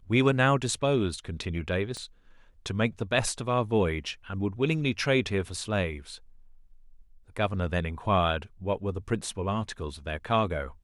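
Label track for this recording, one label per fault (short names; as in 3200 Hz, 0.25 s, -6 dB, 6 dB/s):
1.970000	1.970000	pop -25 dBFS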